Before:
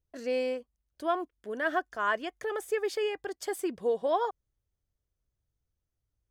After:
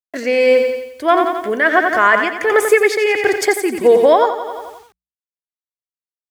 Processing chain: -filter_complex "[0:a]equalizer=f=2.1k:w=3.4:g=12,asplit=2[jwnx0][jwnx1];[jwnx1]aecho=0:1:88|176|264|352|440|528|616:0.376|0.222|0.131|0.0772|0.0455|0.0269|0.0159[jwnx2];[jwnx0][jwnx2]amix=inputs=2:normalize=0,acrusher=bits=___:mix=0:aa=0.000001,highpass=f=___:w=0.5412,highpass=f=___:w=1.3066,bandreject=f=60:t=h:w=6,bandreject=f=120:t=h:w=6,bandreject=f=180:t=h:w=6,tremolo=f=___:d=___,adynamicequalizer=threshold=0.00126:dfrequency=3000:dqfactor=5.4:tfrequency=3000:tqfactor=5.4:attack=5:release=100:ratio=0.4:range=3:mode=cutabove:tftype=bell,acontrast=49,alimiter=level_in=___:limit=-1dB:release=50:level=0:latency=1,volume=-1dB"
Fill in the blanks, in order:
10, 47, 47, 1.5, 0.57, 15dB